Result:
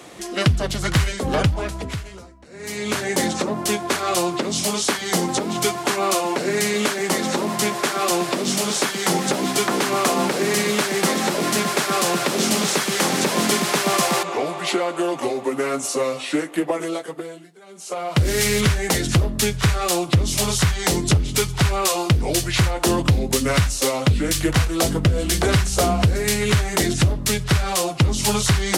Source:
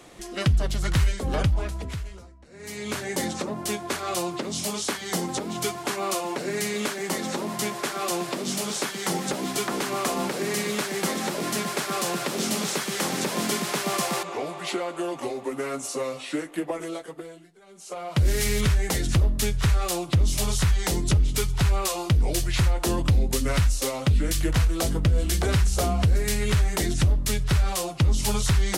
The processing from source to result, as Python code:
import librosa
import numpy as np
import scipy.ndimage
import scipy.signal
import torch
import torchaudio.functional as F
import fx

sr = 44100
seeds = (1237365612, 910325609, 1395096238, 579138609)

y = scipy.signal.sosfilt(scipy.signal.butter(2, 74.0, 'highpass', fs=sr, output='sos'), x)
y = fx.low_shelf(y, sr, hz=110.0, db=-4.5)
y = fx.doppler_dist(y, sr, depth_ms=0.18)
y = y * 10.0 ** (7.5 / 20.0)